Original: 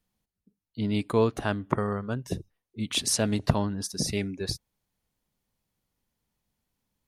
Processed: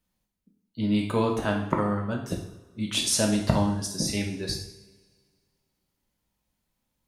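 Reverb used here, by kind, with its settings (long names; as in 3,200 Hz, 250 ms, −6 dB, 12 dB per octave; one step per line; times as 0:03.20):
coupled-rooms reverb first 0.63 s, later 2 s, from −20 dB, DRR 0 dB
level −1 dB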